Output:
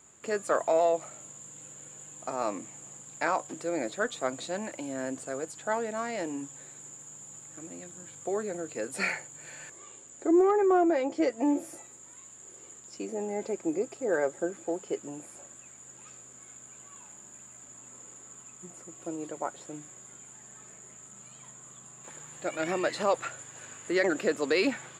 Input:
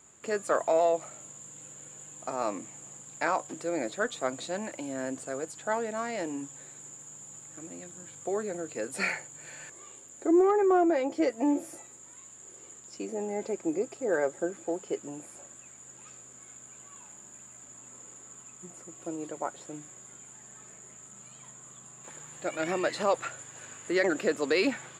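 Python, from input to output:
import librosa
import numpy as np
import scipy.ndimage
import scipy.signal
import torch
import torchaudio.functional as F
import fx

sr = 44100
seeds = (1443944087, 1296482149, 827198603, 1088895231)

y = fx.lowpass(x, sr, hz=9600.0, slope=24, at=(9.76, 11.42))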